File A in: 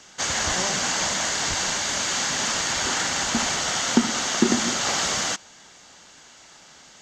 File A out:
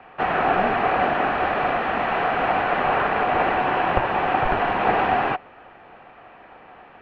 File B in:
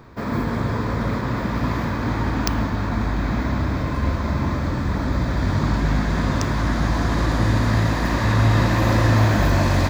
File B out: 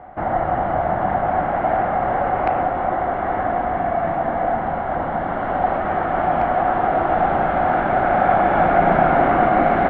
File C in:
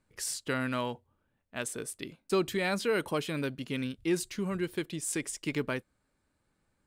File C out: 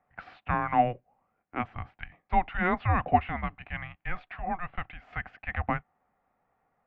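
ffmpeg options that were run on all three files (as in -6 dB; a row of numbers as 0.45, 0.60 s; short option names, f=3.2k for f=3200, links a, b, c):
-af "equalizer=f=1.1k:w=7.9:g=15,highpass=f=430:t=q:w=0.5412,highpass=f=430:t=q:w=1.307,lowpass=f=2.7k:t=q:w=0.5176,lowpass=f=2.7k:t=q:w=0.7071,lowpass=f=2.7k:t=q:w=1.932,afreqshift=-360,volume=5dB"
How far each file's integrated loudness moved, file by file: +1.0, +2.0, +2.5 LU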